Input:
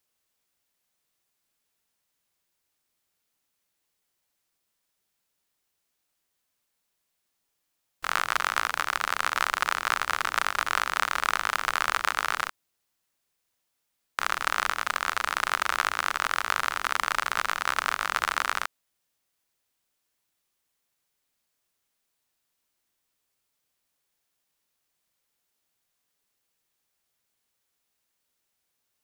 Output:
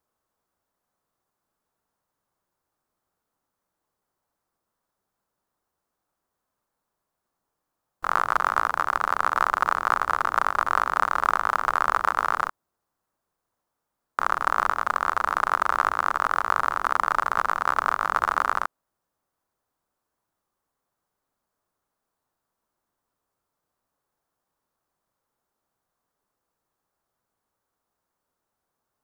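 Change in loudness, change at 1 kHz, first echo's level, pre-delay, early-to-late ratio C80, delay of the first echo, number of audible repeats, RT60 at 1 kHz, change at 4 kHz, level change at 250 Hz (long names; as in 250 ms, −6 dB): +3.0 dB, +6.0 dB, no echo audible, no reverb audible, no reverb audible, no echo audible, no echo audible, no reverb audible, −9.5 dB, +5.0 dB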